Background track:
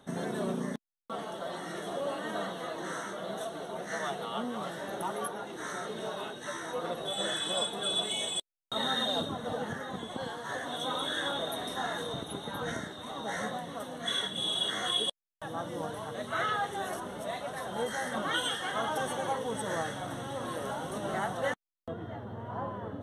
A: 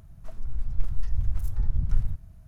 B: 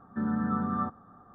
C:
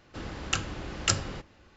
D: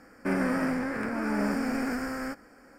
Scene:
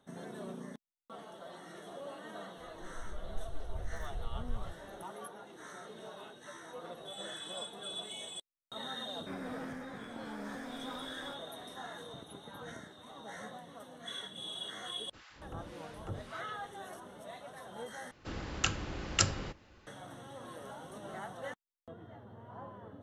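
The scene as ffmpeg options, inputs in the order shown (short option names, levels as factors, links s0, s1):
-filter_complex "[3:a]asplit=2[s0][s1];[0:a]volume=0.282[s2];[s0]acrossover=split=970[s3][s4];[s3]aeval=exprs='val(0)*(1-1/2+1/2*cos(2*PI*1.8*n/s))':c=same[s5];[s4]aeval=exprs='val(0)*(1-1/2-1/2*cos(2*PI*1.8*n/s))':c=same[s6];[s5][s6]amix=inputs=2:normalize=0[s7];[s2]asplit=2[s8][s9];[s8]atrim=end=18.114[s10];[s1]atrim=end=1.76,asetpts=PTS-STARTPTS,volume=0.75[s11];[s9]atrim=start=19.866[s12];[1:a]atrim=end=2.47,asetpts=PTS-STARTPTS,volume=0.188,afade=t=in:d=0.004:c=hsin,afade=t=out:st=2.466:d=0.004:c=hsin,adelay=2570[s13];[4:a]atrim=end=2.78,asetpts=PTS-STARTPTS,volume=0.158,afade=t=in:d=0.004:c=hsin,afade=t=out:st=2.776:d=0.004:c=hsin,adelay=9010[s14];[s7]atrim=end=1.76,asetpts=PTS-STARTPTS,volume=0.355,afade=t=in:d=0.004:c=hsin,afade=t=out:st=1.756:d=0.004:c=hsin,adelay=14990[s15];[s10][s11]acrossfade=d=0.004:c1=hsin:c2=hsin[s16];[s16][s12]acrossfade=d=0.004:c1=hsin:c2=hsin[s17];[s17][s13][s14][s15]amix=inputs=4:normalize=0"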